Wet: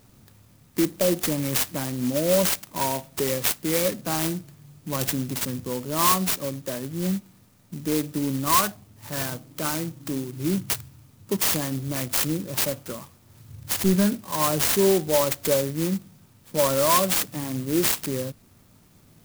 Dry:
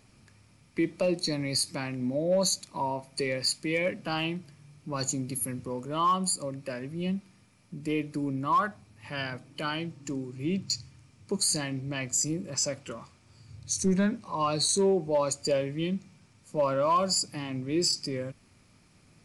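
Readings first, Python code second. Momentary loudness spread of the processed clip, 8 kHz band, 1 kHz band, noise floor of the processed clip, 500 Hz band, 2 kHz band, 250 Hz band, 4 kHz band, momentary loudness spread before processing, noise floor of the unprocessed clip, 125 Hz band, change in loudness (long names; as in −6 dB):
12 LU, +4.0 dB, +3.0 dB, −56 dBFS, +4.5 dB, +4.5 dB, +5.0 dB, +2.0 dB, 11 LU, −61 dBFS, +5.0 dB, +5.5 dB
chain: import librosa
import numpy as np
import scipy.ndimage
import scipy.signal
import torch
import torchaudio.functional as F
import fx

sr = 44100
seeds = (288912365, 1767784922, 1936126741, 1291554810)

y = fx.clock_jitter(x, sr, seeds[0], jitter_ms=0.12)
y = y * 10.0 ** (5.0 / 20.0)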